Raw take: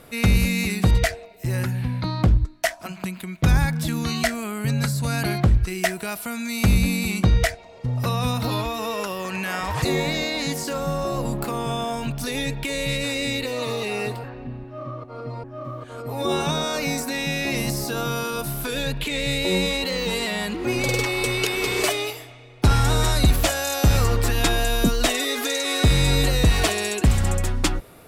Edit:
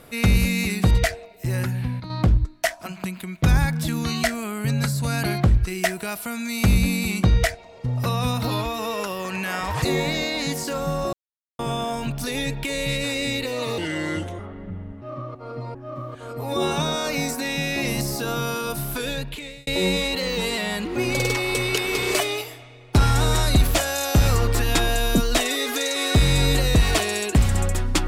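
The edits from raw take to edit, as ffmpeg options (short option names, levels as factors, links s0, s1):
-filter_complex "[0:a]asplit=8[s0][s1][s2][s3][s4][s5][s6][s7];[s0]atrim=end=2,asetpts=PTS-STARTPTS,afade=t=out:st=1.51:d=0.49:c=log:silence=0.316228[s8];[s1]atrim=start=2:end=2.1,asetpts=PTS-STARTPTS,volume=0.316[s9];[s2]atrim=start=2.1:end=11.13,asetpts=PTS-STARTPTS,afade=t=in:d=0.49:c=log:silence=0.316228,afade=t=out:st=9.026:d=0.004:c=hsin[s10];[s3]atrim=start=11.13:end=11.59,asetpts=PTS-STARTPTS,volume=0[s11];[s4]atrim=start=11.59:end=13.784,asetpts=PTS-STARTPTS,afade=t=in:d=0.004:c=hsin[s12];[s5]atrim=start=13.78:end=14.71,asetpts=PTS-STARTPTS,asetrate=33075,aresample=44100[s13];[s6]atrim=start=14.706:end=19.36,asetpts=PTS-STARTPTS,afade=t=out:st=3.974:d=0.68[s14];[s7]atrim=start=19.36,asetpts=PTS-STARTPTS,afade=t=in:d=0.004:c=hsin[s15];[s8][s9][s10][s11][s12]concat=n=5:v=0:a=1[s16];[s16][s13]acrossfade=d=0.004:c1=hsin:c2=hsin[s17];[s14][s15]concat=n=2:v=0:a=1[s18];[s17][s18]acrossfade=d=0.004:c1=hsin:c2=hsin"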